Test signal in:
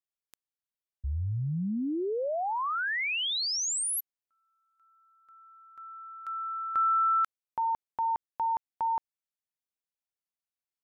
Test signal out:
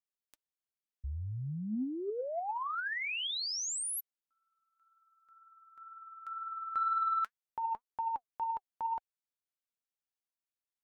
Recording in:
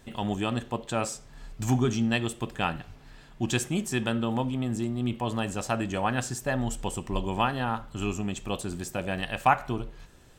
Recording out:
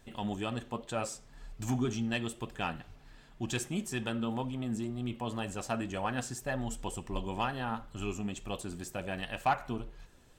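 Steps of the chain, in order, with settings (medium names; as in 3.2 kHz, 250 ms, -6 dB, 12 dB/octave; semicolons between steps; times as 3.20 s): flange 2 Hz, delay 1.1 ms, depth 3.7 ms, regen +67%; saturation -17.5 dBFS; trim -1.5 dB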